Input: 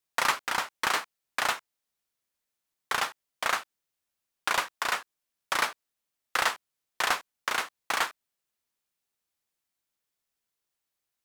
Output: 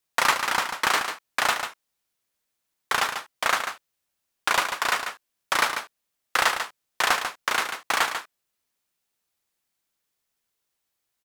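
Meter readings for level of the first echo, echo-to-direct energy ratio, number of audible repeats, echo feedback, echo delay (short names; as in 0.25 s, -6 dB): -8.0 dB, -8.0 dB, 1, no steady repeat, 0.143 s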